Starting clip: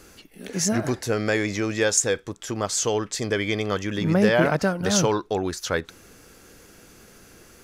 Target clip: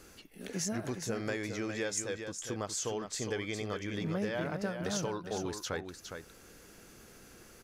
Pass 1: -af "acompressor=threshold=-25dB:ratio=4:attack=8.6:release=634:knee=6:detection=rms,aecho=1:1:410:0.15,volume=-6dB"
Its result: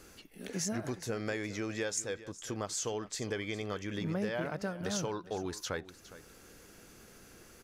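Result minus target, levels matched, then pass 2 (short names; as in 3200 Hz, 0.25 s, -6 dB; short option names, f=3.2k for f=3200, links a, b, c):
echo-to-direct -9 dB
-af "acompressor=threshold=-25dB:ratio=4:attack=8.6:release=634:knee=6:detection=rms,aecho=1:1:410:0.422,volume=-6dB"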